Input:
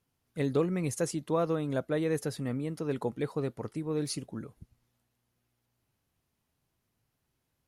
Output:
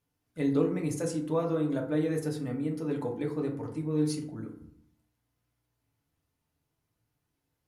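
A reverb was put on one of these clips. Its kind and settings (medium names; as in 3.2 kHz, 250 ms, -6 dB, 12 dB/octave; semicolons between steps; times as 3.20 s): FDN reverb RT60 0.66 s, low-frequency decay 1.25×, high-frequency decay 0.45×, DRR 0.5 dB; trim -4.5 dB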